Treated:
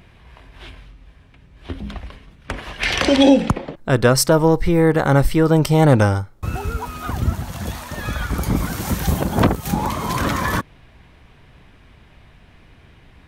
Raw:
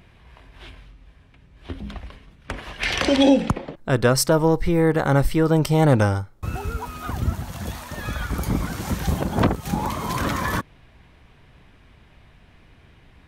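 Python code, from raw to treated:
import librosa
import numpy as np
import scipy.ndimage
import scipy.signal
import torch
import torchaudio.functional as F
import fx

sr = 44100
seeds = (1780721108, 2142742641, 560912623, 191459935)

y = fx.high_shelf(x, sr, hz=11000.0, db=9.5, at=(8.56, 9.73))
y = y * librosa.db_to_amplitude(3.5)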